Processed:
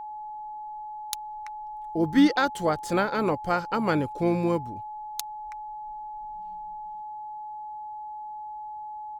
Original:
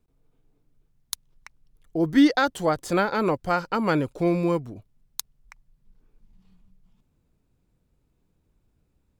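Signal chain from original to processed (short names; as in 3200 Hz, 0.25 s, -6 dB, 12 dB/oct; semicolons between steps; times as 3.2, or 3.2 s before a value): harmoniser -7 st -17 dB; whine 850 Hz -33 dBFS; gain -2 dB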